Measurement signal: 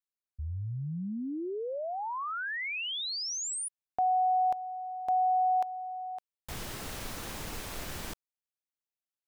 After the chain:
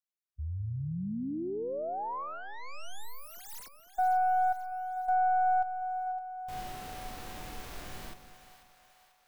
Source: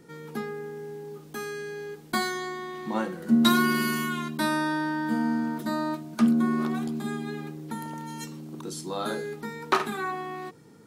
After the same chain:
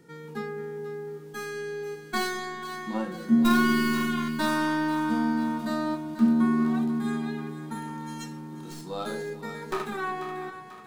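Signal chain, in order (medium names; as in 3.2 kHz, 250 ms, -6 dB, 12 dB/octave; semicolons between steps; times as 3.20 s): tracing distortion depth 0.19 ms; harmonic-percussive split percussive -15 dB; two-band feedback delay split 600 Hz, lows 194 ms, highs 490 ms, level -11.5 dB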